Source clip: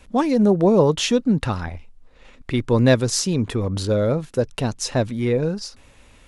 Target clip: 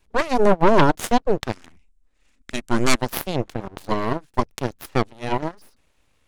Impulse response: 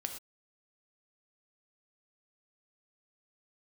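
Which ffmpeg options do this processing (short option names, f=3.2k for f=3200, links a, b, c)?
-filter_complex "[0:a]aeval=exprs='abs(val(0))':c=same,aeval=exprs='0.631*(cos(1*acos(clip(val(0)/0.631,-1,1)))-cos(1*PI/2))+0.126*(cos(5*acos(clip(val(0)/0.631,-1,1)))-cos(5*PI/2))+0.2*(cos(7*acos(clip(val(0)/0.631,-1,1)))-cos(7*PI/2))':c=same,asettb=1/sr,asplit=3[a][b][c];[a]atrim=end=1.524[d];[b]atrim=start=1.52:end=2.98,asetpts=PTS-STARTPTS,afade=t=in:d=0.004:c=qsin,afade=t=out:st=1.456:d=0.004:c=qsin,equalizer=f=125:t=o:w=1:g=-9,equalizer=f=250:t=o:w=1:g=3,equalizer=f=500:t=o:w=1:g=-8,equalizer=f=1k:t=o:w=1:g=-4,equalizer=f=4k:t=o:w=1:g=-4,equalizer=f=8k:t=o:w=1:g=9[e];[c]atrim=start=2.976[f];[d][e]acrossfade=d=0.004:c1=hsin:c2=qsin[g];[g][f]acrossfade=d=0.004:c1=qsin:c2=hsin"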